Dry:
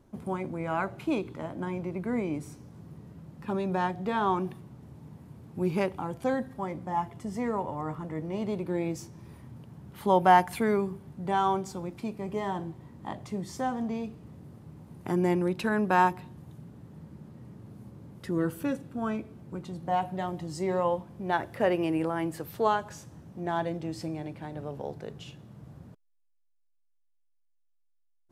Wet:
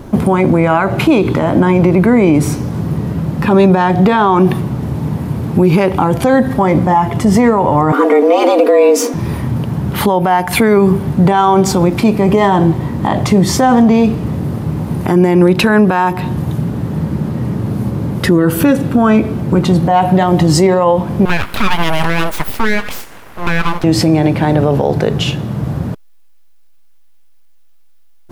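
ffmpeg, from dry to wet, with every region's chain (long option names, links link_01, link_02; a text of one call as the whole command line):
ffmpeg -i in.wav -filter_complex "[0:a]asettb=1/sr,asplit=3[link_01][link_02][link_03];[link_01]atrim=end=7.924[link_04];[link_02]atrim=start=7.92:end=9.14,asetpts=PTS-STARTPTS,afade=type=in:duration=0.004:curve=qsin,afade=type=out:start_time=1.216:duration=0.004:curve=qsin,highpass=180,afreqshift=140,aecho=1:1:4.2:0.73,atrim=end_sample=53802[link_05];[link_03]atrim=start=9.136[link_06];[link_04][link_05]acrossfade=duration=0.004:curve1=hsin:curve2=qsin[link_07];[link_07][link_06]acrossfade=duration=0.004:curve1=qsin:curve2=hsin,asettb=1/sr,asplit=3[link_08][link_09][link_10];[link_08]atrim=end=21.254[link_11];[link_09]atrim=start=21.25:end=23.84,asetpts=PTS-STARTPTS,afade=type=in:duration=0.004:curve=qsin,afade=type=out:start_time=2.586:duration=0.004:curve=qsin,highpass=650,equalizer=frequency=4900:width=1.1:gain=-7.5,aeval=exprs='abs(val(0))':channel_layout=same[link_12];[link_10]atrim=start=23.836[link_13];[link_11][link_12]acrossfade=duration=0.004:curve1=hsin:curve2=qsin[link_14];[link_14][link_13]acrossfade=duration=0.004:curve1=qsin:curve2=hsin,equalizer=frequency=7800:width=1:gain=-4,acompressor=threshold=-30dB:ratio=6,alimiter=level_in=30.5dB:limit=-1dB:release=50:level=0:latency=1,volume=-1dB" out.wav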